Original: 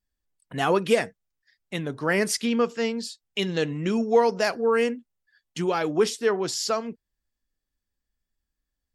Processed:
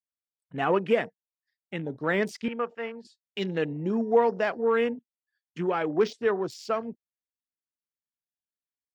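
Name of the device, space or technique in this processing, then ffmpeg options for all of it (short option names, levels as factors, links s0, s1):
over-cleaned archive recording: -filter_complex "[0:a]highpass=130,lowpass=7000,afwtdn=0.0178,deesser=0.9,asettb=1/sr,asplit=3[s0][s1][s2];[s0]atrim=end=2.484[s3];[s1]atrim=start=2.48:end=3.05,asetpts=PTS-STARTPTS,afade=t=in:d=0.004:c=qsin,afade=t=out:st=0.566:d=0.004:c=qsin,acrossover=split=540 2800:gain=0.251 1 0.2[s4][s5][s6];[s4][s5][s6]amix=inputs=3:normalize=0[s7];[s2]atrim=start=3.046[s8];[s3][s7]acrossfade=d=0.004:c1=hsin:c2=qsin[s9];[s9][s8]acrossfade=d=0.004:c1=qsin:c2=hsin,volume=0.794"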